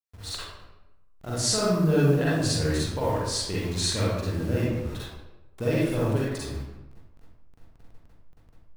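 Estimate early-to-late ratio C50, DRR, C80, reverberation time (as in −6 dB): −4.0 dB, −8.0 dB, 1.0 dB, 1.0 s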